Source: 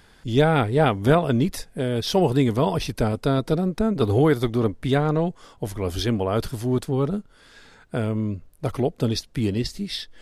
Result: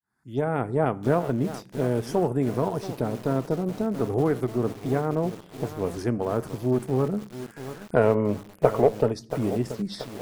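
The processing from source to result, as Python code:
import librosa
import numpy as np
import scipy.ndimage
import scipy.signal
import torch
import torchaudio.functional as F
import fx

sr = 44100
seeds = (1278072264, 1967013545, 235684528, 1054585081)

y = fx.fade_in_head(x, sr, length_s=0.7)
y = fx.recorder_agc(y, sr, target_db=-11.0, rise_db_per_s=8.1, max_gain_db=30)
y = fx.env_phaser(y, sr, low_hz=510.0, high_hz=4100.0, full_db=-17.5)
y = scipy.signal.sosfilt(scipy.signal.butter(2, 120.0, 'highpass', fs=sr, output='sos'), y)
y = fx.low_shelf(y, sr, hz=160.0, db=-4.0)
y = fx.rev_fdn(y, sr, rt60_s=0.61, lf_ratio=1.3, hf_ratio=0.75, size_ms=47.0, drr_db=15.0)
y = fx.spec_box(y, sr, start_s=7.96, length_s=1.16, low_hz=390.0, high_hz=3000.0, gain_db=11)
y = fx.cheby_harmonics(y, sr, harmonics=(8,), levels_db=(-28,), full_scale_db=2.0)
y = fx.peak_eq(y, sr, hz=4400.0, db=-9.0, octaves=2.4)
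y = fx.echo_crushed(y, sr, ms=681, feedback_pct=55, bits=5, wet_db=-12.0)
y = F.gain(torch.from_numpy(y), -4.0).numpy()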